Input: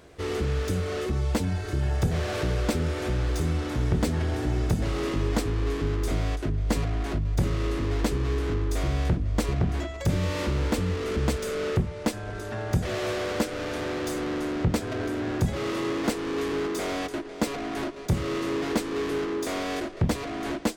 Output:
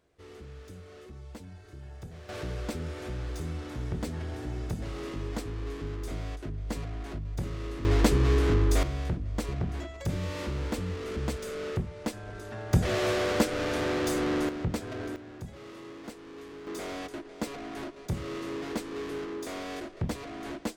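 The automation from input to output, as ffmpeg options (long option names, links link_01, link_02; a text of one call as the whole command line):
ffmpeg -i in.wav -af "asetnsamples=nb_out_samples=441:pad=0,asendcmd='2.29 volume volume -9dB;7.85 volume volume 3.5dB;8.83 volume volume -6.5dB;12.73 volume volume 1.5dB;14.49 volume volume -6.5dB;15.16 volume volume -16.5dB;16.67 volume volume -7.5dB',volume=-19dB" out.wav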